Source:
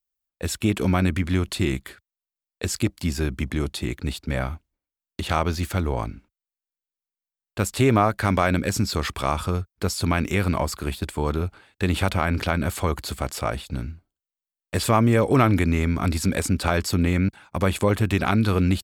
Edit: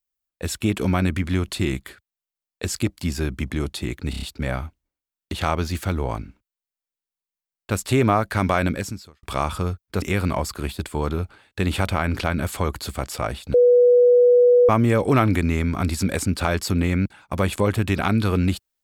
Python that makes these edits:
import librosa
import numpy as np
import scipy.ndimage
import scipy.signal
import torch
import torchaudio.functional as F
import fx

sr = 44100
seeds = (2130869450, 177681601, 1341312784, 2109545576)

y = fx.edit(x, sr, fx.stutter(start_s=4.1, slice_s=0.03, count=5),
    fx.fade_out_span(start_s=8.6, length_s=0.51, curve='qua'),
    fx.cut(start_s=9.9, length_s=0.35),
    fx.bleep(start_s=13.77, length_s=1.15, hz=489.0, db=-10.5), tone=tone)